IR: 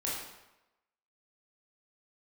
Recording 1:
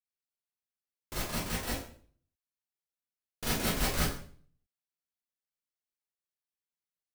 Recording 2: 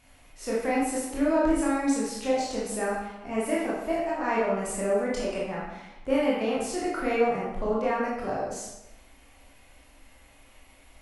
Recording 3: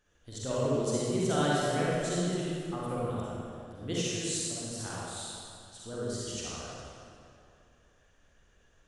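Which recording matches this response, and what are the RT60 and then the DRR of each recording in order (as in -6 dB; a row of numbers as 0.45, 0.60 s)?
2; 0.50, 0.95, 2.5 s; -9.0, -6.5, -7.5 dB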